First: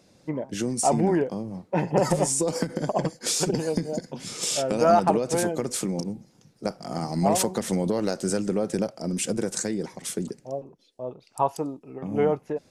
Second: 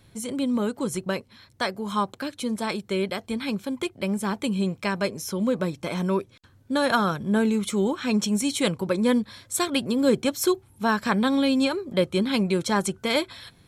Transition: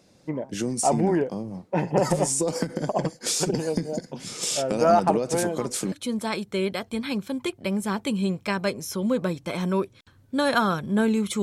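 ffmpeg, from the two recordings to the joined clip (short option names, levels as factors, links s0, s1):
-filter_complex "[1:a]asplit=2[s0][s1];[0:a]apad=whole_dur=11.42,atrim=end=11.42,atrim=end=5.922[s2];[s1]atrim=start=2.288:end=7.79[s3];[s0]atrim=start=1.77:end=2.29,asetpts=PTS-STARTPTS,volume=0.178,afade=t=in:d=0.004:c=hsin,afade=t=out:st=0.516:d=0.004:c=hsin,adelay=5400[s4];[s2][s3]acrossfade=d=0.004:c1=hsin:c2=hsin[s5];[s5][s4]amix=inputs=2:normalize=0"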